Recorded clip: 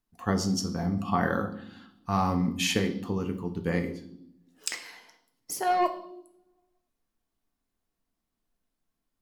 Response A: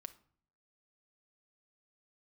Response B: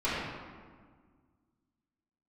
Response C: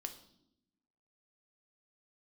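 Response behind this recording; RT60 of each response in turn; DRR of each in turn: C; 0.55, 1.7, 0.75 s; 9.5, -12.5, 6.0 dB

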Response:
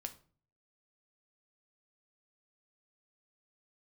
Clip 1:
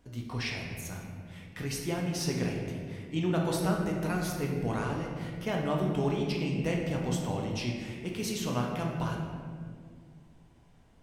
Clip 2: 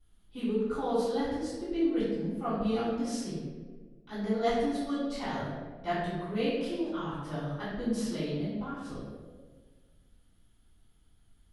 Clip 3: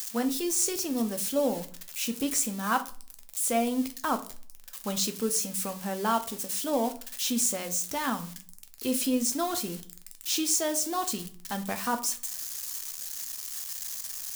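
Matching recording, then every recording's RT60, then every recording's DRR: 3; 2.0, 1.5, 0.45 s; -1.0, -16.5, 6.5 dB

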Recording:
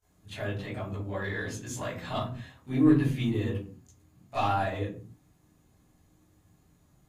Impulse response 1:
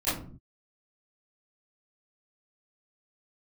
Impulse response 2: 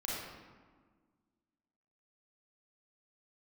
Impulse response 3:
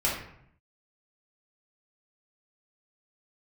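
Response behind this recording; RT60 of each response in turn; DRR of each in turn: 1; 0.45, 1.6, 0.70 s; -16.5, -6.0, -6.5 dB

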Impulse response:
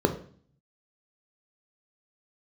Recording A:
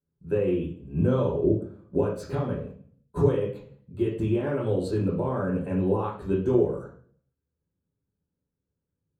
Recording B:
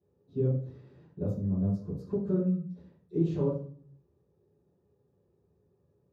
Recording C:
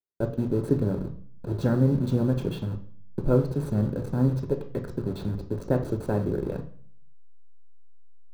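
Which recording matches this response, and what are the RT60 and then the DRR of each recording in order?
C; 0.50, 0.50, 0.50 s; -4.5, -14.0, 4.5 dB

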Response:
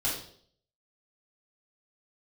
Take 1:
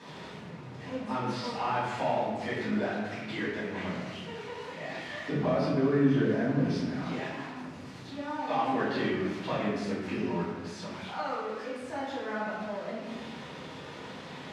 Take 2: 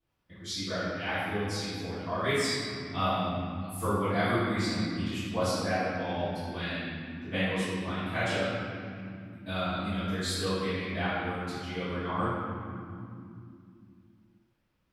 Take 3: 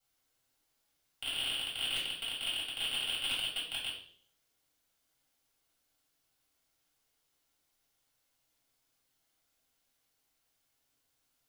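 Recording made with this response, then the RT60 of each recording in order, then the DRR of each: 3; 1.2, 2.7, 0.60 s; -10.0, -18.5, -7.5 dB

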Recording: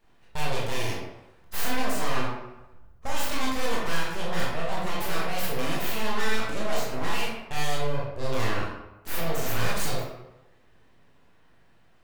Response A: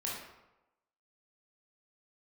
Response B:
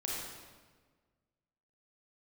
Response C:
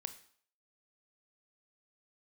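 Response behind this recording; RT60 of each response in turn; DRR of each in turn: A; 0.95, 1.5, 0.55 s; -5.0, -4.5, 9.5 dB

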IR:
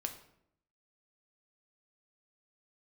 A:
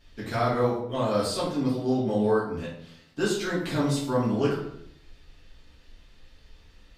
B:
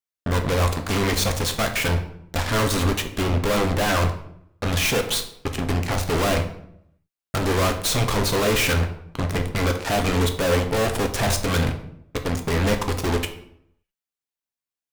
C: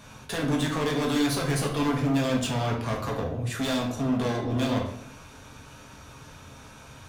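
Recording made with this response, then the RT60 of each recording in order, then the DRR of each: B; 0.70, 0.70, 0.70 s; -8.5, 5.0, -1.5 dB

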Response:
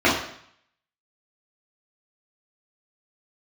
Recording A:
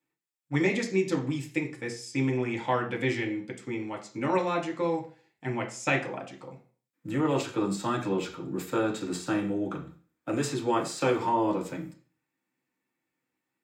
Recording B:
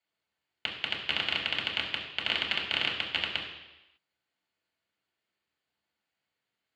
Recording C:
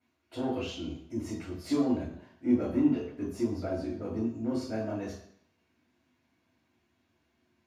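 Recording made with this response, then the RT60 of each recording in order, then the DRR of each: C; 0.40, 1.0, 0.65 s; -0.5, -3.5, -9.0 dB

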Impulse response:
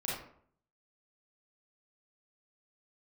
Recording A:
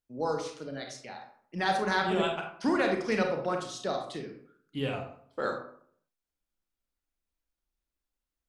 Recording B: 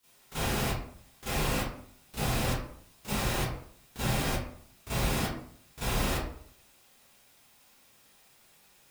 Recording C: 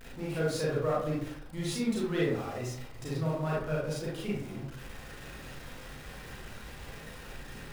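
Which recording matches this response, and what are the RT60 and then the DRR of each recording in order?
C; 0.60, 0.60, 0.60 s; 2.5, -15.5, -6.5 dB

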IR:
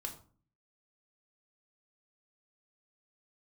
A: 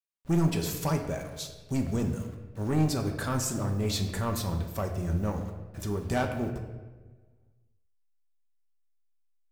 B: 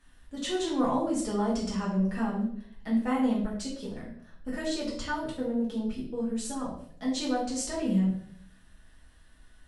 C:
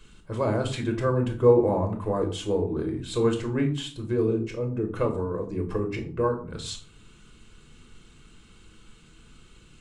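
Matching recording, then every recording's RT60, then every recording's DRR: C; 1.3, 0.60, 0.45 s; 3.0, -7.0, 2.5 dB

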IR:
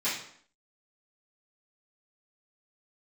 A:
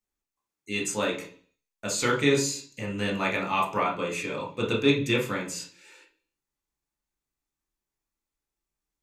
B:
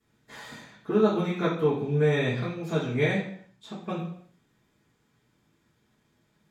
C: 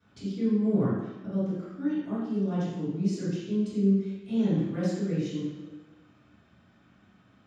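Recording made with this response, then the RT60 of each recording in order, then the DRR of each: B; 0.45, 0.60, 1.2 s; -1.5, -15.0, -15.5 dB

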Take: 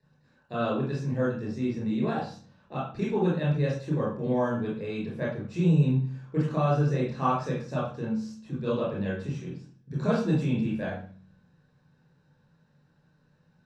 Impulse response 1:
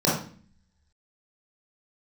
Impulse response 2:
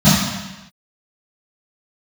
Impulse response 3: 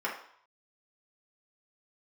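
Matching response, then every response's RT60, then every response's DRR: 1; 0.45 s, not exponential, 0.60 s; -7.0, -15.0, -5.5 dB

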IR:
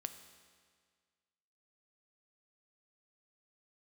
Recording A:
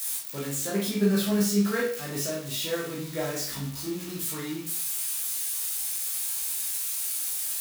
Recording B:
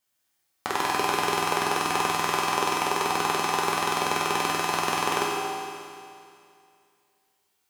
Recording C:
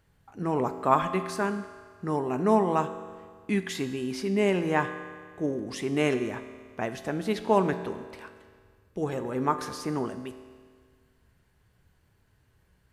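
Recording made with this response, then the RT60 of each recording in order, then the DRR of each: C; 0.50, 2.4, 1.8 s; -5.5, -6.5, 8.5 dB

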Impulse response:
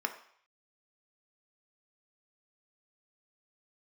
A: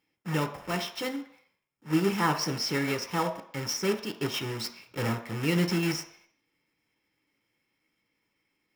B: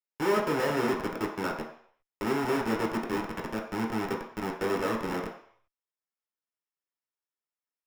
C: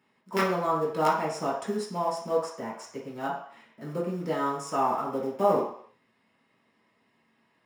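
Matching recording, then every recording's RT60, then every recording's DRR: A; 0.60, 0.60, 0.60 s; 5.5, -1.5, -6.5 dB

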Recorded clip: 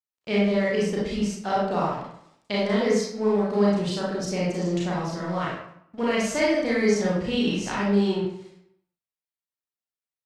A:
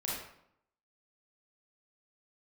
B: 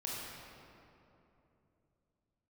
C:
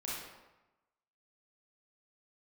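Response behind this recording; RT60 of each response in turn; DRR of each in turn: A; 0.70, 3.0, 1.0 s; -6.0, -5.5, -7.0 dB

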